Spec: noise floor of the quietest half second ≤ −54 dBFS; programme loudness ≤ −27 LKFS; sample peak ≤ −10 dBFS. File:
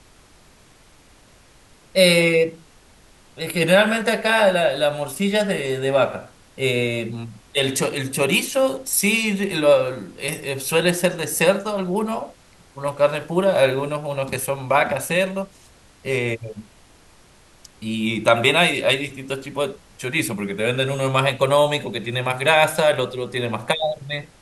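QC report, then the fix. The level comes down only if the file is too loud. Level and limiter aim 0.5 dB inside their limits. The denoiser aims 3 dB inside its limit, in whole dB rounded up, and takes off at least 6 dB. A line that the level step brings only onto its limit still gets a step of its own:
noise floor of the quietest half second −51 dBFS: out of spec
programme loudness −20.5 LKFS: out of spec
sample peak −2.0 dBFS: out of spec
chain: level −7 dB
brickwall limiter −10.5 dBFS

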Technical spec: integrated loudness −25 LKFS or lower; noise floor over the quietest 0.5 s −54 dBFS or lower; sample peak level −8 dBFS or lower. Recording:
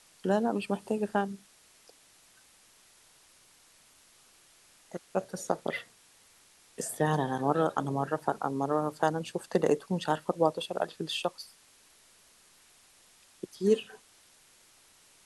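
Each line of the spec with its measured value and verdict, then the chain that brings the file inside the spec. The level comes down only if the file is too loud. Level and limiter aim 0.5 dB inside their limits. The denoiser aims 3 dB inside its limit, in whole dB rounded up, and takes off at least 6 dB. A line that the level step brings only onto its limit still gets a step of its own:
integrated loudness −31.0 LKFS: in spec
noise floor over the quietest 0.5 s −61 dBFS: in spec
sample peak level −11.5 dBFS: in spec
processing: no processing needed

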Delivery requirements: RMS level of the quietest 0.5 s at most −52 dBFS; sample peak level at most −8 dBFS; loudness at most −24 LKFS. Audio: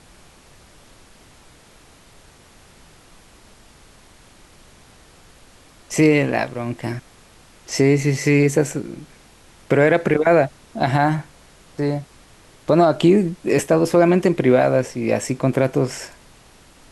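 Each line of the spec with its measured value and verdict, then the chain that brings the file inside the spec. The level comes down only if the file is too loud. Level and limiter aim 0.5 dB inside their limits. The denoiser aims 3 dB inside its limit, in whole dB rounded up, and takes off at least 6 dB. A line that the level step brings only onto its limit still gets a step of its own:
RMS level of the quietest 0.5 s −49 dBFS: out of spec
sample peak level −4.5 dBFS: out of spec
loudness −18.5 LKFS: out of spec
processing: level −6 dB

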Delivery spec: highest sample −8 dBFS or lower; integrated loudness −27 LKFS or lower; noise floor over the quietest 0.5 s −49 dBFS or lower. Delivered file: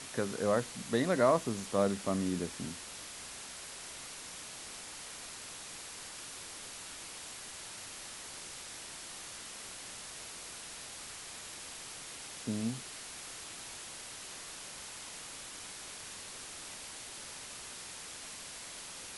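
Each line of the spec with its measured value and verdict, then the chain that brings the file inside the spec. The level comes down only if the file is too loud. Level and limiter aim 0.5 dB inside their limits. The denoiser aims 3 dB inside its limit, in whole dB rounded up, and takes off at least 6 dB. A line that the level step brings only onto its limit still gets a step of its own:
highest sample −14.0 dBFS: in spec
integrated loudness −39.0 LKFS: in spec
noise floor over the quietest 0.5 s −47 dBFS: out of spec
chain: broadband denoise 6 dB, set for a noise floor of −47 dBFS

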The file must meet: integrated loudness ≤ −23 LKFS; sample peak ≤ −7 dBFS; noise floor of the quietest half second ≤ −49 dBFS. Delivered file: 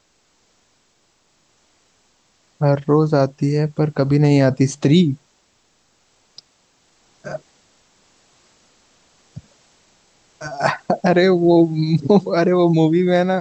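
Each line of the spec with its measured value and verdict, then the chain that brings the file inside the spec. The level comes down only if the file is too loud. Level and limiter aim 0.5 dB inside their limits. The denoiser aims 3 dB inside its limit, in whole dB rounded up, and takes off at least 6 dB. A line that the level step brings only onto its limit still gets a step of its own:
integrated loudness −16.5 LKFS: out of spec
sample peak −3.0 dBFS: out of spec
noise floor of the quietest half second −62 dBFS: in spec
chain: level −7 dB

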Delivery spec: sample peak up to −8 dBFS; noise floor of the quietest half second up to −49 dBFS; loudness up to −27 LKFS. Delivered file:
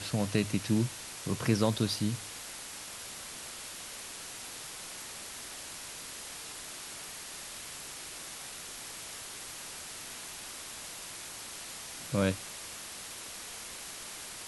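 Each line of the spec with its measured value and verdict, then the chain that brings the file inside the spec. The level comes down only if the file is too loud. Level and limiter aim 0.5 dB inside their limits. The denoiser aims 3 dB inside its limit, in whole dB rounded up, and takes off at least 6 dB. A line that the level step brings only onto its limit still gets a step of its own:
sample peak −12.5 dBFS: in spec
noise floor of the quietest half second −44 dBFS: out of spec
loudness −36.5 LKFS: in spec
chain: broadband denoise 8 dB, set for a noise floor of −44 dBFS

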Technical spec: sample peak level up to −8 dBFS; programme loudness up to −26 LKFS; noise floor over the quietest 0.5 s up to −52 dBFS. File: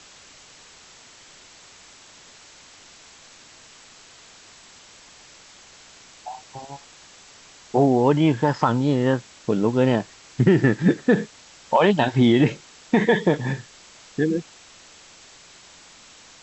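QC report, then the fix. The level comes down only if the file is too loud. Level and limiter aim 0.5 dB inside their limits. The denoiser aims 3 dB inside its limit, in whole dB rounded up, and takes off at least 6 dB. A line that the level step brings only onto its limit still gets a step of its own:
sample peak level −5.0 dBFS: out of spec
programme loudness −20.5 LKFS: out of spec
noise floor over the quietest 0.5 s −48 dBFS: out of spec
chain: level −6 dB

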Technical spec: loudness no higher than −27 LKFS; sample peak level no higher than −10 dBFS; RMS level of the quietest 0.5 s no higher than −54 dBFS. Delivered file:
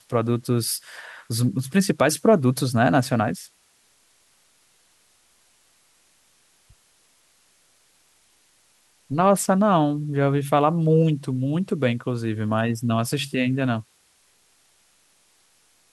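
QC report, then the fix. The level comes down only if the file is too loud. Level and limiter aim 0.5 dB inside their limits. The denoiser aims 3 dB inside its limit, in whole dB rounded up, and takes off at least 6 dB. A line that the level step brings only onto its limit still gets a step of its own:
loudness −22.0 LKFS: out of spec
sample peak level −5.5 dBFS: out of spec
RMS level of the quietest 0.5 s −62 dBFS: in spec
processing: level −5.5 dB

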